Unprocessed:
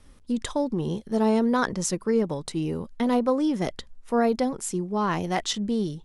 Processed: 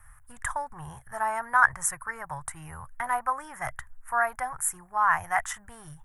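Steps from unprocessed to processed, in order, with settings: FFT filter 130 Hz 0 dB, 200 Hz -30 dB, 460 Hz -26 dB, 740 Hz +1 dB, 1.7 kHz +11 dB, 2.7 kHz -10 dB, 4.2 kHz -24 dB, 8 kHz +2 dB, 12 kHz +13 dB

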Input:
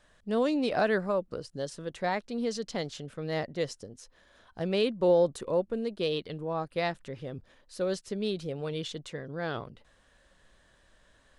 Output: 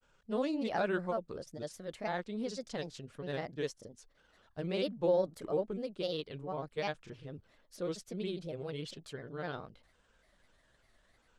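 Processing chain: granulator, spray 26 ms, pitch spread up and down by 3 st; trim -5 dB

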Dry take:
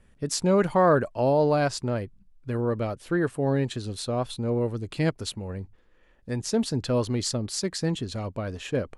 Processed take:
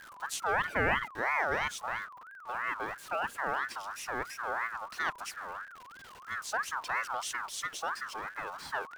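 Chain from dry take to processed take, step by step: jump at every zero crossing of -36 dBFS; ring modulator with a swept carrier 1.3 kHz, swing 25%, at 3 Hz; trim -7 dB

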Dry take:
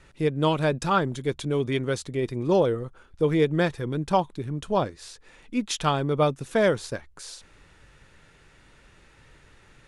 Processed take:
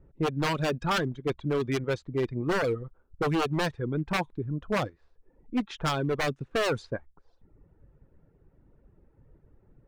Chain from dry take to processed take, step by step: level-controlled noise filter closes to 430 Hz, open at -17 dBFS; wavefolder -20 dBFS; reverb removal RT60 0.75 s

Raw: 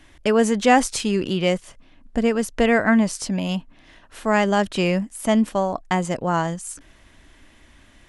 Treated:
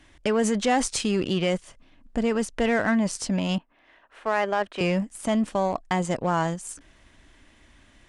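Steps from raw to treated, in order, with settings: 3.58–4.81 s: three-band isolator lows -17 dB, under 370 Hz, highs -16 dB, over 2.9 kHz; in parallel at -1 dB: compressor with a negative ratio -22 dBFS, ratio -1; on the sum: saturation -11 dBFS, distortion -15 dB; Chebyshev shaper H 3 -15 dB, 8 -37 dB, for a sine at -11 dBFS; resampled via 22.05 kHz; trim -4 dB

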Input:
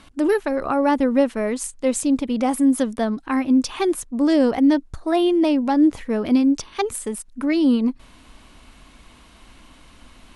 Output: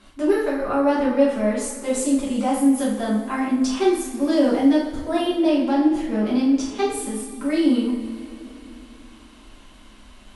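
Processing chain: 4.56–5.22 s: treble shelf 10 kHz +5.5 dB; reverberation, pre-delay 3 ms, DRR -8 dB; trim -9 dB

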